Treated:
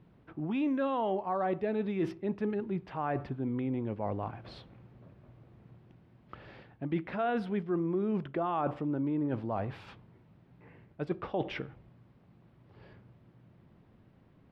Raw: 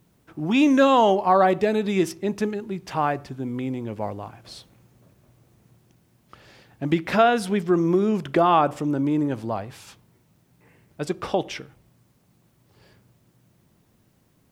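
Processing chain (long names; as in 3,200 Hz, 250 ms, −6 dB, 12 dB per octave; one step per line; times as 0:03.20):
reversed playback
downward compressor 4 to 1, threshold −32 dBFS, peak gain reduction 16.5 dB
reversed playback
high-frequency loss of the air 390 metres
level +2 dB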